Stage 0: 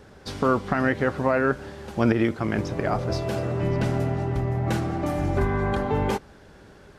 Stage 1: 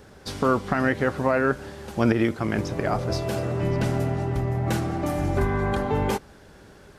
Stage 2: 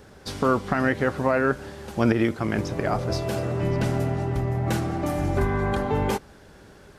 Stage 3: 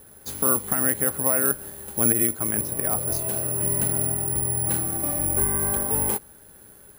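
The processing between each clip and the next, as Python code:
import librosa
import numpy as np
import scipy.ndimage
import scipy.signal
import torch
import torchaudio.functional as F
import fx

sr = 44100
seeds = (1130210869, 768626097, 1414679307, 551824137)

y1 = fx.high_shelf(x, sr, hz=7500.0, db=8.0)
y2 = y1
y3 = (np.kron(scipy.signal.resample_poly(y2, 1, 4), np.eye(4)[0]) * 4)[:len(y2)]
y3 = y3 * librosa.db_to_amplitude(-6.0)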